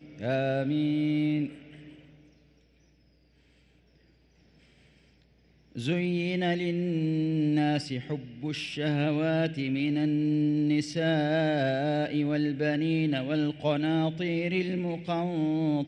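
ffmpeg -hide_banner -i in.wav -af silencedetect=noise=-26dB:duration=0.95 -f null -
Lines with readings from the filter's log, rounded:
silence_start: 1.46
silence_end: 5.77 | silence_duration: 4.31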